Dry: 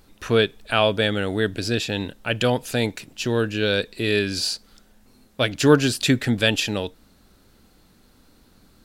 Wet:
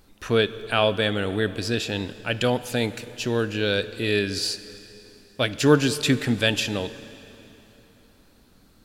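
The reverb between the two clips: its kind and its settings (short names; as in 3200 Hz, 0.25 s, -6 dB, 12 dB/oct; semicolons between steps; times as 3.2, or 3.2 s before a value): plate-style reverb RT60 3.6 s, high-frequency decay 0.85×, DRR 13.5 dB; gain -2 dB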